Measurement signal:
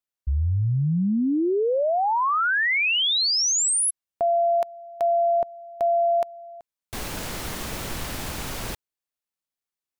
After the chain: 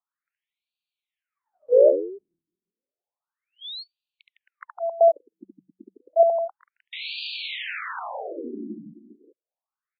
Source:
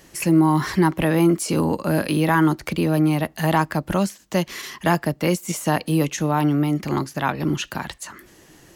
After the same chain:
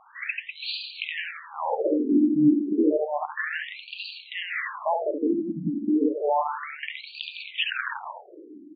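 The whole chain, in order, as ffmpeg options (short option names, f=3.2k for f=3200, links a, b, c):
-af "bandreject=f=50:t=h:w=6,bandreject=f=100:t=h:w=6,bandreject=f=150:t=h:w=6,bandreject=f=200:t=h:w=6,alimiter=limit=-17.5dB:level=0:latency=1:release=132,afreqshift=-14,aecho=1:1:70|157.5|266.9|403.6|574.5:0.631|0.398|0.251|0.158|0.1,afftfilt=real='re*between(b*sr/1024,240*pow(3400/240,0.5+0.5*sin(2*PI*0.31*pts/sr))/1.41,240*pow(3400/240,0.5+0.5*sin(2*PI*0.31*pts/sr))*1.41)':imag='im*between(b*sr/1024,240*pow(3400/240,0.5+0.5*sin(2*PI*0.31*pts/sr))/1.41,240*pow(3400/240,0.5+0.5*sin(2*PI*0.31*pts/sr))*1.41)':win_size=1024:overlap=0.75,volume=7dB"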